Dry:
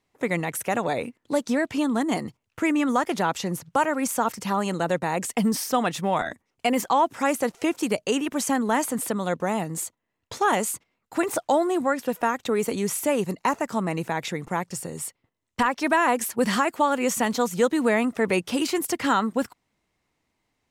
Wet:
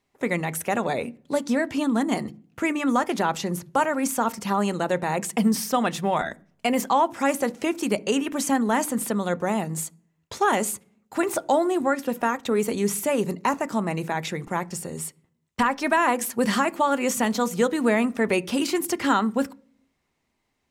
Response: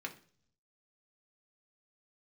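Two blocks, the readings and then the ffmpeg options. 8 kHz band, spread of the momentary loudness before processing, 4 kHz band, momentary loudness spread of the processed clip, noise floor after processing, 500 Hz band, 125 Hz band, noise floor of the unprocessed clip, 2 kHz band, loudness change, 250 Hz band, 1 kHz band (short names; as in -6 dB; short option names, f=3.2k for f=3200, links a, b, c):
0.0 dB, 8 LU, 0.0 dB, 7 LU, -75 dBFS, 0.0 dB, +1.0 dB, -78 dBFS, 0.0 dB, +0.5 dB, +1.0 dB, 0.0 dB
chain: -filter_complex "[0:a]asplit=2[a][b];[b]lowshelf=f=440:g=11[c];[1:a]atrim=start_sample=2205,adelay=5[d];[c][d]afir=irnorm=-1:irlink=0,volume=-14.5dB[e];[a][e]amix=inputs=2:normalize=0"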